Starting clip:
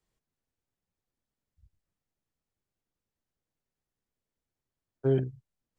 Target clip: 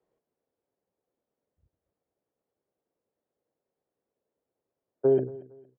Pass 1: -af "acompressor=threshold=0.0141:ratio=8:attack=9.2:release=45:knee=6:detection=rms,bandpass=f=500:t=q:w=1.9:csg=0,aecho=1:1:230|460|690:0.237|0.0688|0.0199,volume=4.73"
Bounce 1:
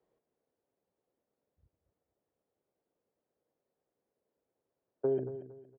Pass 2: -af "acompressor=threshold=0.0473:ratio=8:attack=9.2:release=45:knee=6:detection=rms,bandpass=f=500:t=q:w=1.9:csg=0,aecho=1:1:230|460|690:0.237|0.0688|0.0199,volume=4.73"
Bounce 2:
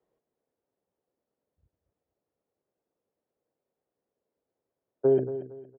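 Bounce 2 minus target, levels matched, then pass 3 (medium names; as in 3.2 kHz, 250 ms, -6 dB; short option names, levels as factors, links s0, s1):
echo-to-direct +7.5 dB
-af "acompressor=threshold=0.0473:ratio=8:attack=9.2:release=45:knee=6:detection=rms,bandpass=f=500:t=q:w=1.9:csg=0,aecho=1:1:230|460:0.1|0.029,volume=4.73"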